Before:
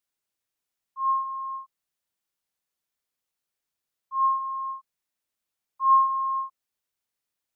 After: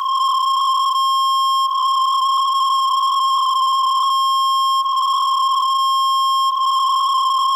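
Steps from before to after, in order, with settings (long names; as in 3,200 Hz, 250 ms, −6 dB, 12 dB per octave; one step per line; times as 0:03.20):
compressor on every frequency bin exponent 0.2
camcorder AGC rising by 55 dB per second
brickwall limiter −20.5 dBFS, peak gain reduction 8.5 dB
leveller curve on the samples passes 3
Chebyshev high-pass with heavy ripple 970 Hz, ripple 3 dB
backwards echo 52 ms −20.5 dB
level +8.5 dB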